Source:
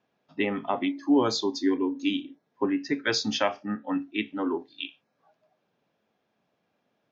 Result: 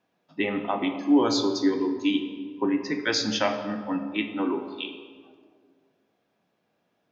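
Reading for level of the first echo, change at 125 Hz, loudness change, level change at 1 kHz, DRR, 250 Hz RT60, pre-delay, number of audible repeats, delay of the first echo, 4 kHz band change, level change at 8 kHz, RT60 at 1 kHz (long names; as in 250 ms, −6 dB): no echo audible, +1.0 dB, +1.5 dB, +1.0 dB, 5.0 dB, 2.1 s, 3 ms, no echo audible, no echo audible, +1.5 dB, can't be measured, 1.6 s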